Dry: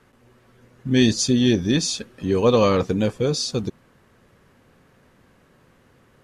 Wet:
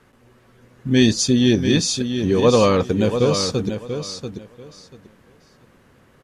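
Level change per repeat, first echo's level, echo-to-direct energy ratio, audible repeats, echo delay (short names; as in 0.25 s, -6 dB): -14.0 dB, -8.0 dB, -8.0 dB, 2, 0.688 s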